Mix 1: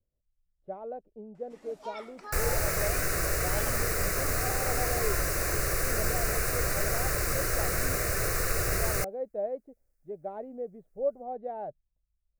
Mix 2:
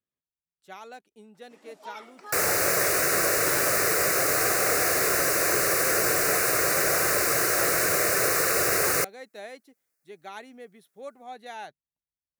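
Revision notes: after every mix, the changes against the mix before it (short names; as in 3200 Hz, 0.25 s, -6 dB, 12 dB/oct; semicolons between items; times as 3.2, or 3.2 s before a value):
speech: remove synth low-pass 580 Hz, resonance Q 4; second sound +7.5 dB; master: add HPF 240 Hz 12 dB/oct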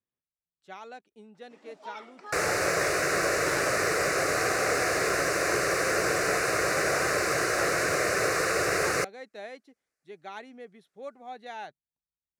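master: add air absorption 71 m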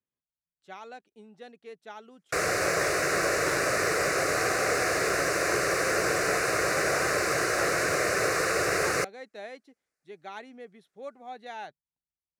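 first sound: muted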